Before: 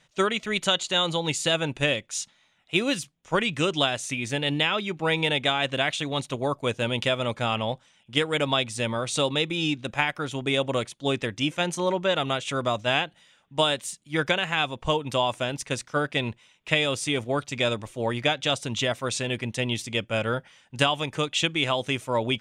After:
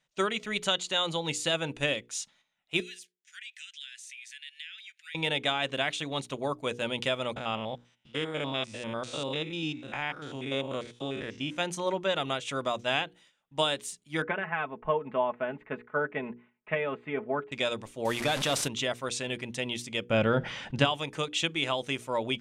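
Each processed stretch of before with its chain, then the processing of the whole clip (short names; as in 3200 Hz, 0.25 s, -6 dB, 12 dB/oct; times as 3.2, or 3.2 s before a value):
2.8–5.15 steep high-pass 1600 Hz 72 dB/oct + compressor 2:1, threshold -45 dBFS
7.36–11.57 stepped spectrum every 0.1 s + air absorption 57 m
14.22–17.52 inverse Chebyshev low-pass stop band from 5100 Hz, stop band 50 dB + low shelf 86 Hz -12 dB + comb 4.7 ms, depth 60%
18.05–18.68 delta modulation 64 kbps, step -34.5 dBFS + fast leveller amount 70%
20.1–20.85 LPF 4400 Hz + low shelf 410 Hz +8.5 dB + fast leveller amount 50%
whole clip: gate -54 dBFS, range -10 dB; bell 96 Hz -7 dB 0.8 oct; notches 60/120/180/240/300/360/420/480 Hz; gain -4.5 dB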